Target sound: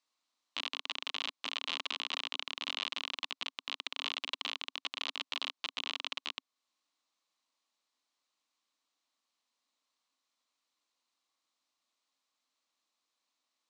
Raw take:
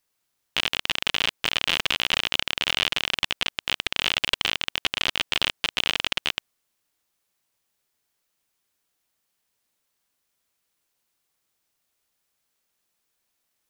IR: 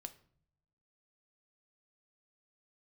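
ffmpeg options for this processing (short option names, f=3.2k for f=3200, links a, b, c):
-af "alimiter=limit=-14dB:level=0:latency=1:release=311,highpass=f=240:w=0.5412,highpass=f=240:w=1.3066,equalizer=f=270:t=q:w=4:g=5,equalizer=f=400:t=q:w=4:g=-9,equalizer=f=1.1k:t=q:w=4:g=8,equalizer=f=1.6k:t=q:w=4:g=-5,equalizer=f=4k:t=q:w=4:g=6,lowpass=f=7.5k:w=0.5412,lowpass=f=7.5k:w=1.3066,volume=-6dB"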